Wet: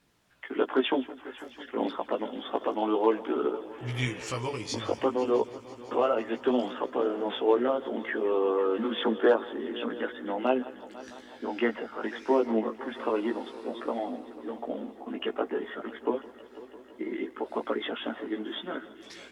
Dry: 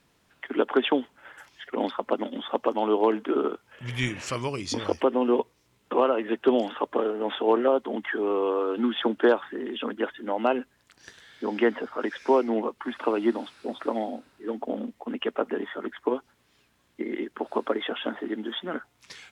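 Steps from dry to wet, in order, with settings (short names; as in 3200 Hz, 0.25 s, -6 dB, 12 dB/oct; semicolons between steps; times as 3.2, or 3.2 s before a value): multi-head echo 0.166 s, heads first and third, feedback 72%, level -19.5 dB; chorus voices 2, 0.28 Hz, delay 17 ms, depth 1.6 ms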